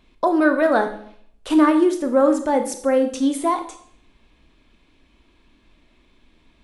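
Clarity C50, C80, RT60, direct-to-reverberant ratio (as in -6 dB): 10.0 dB, 14.0 dB, 0.60 s, 7.0 dB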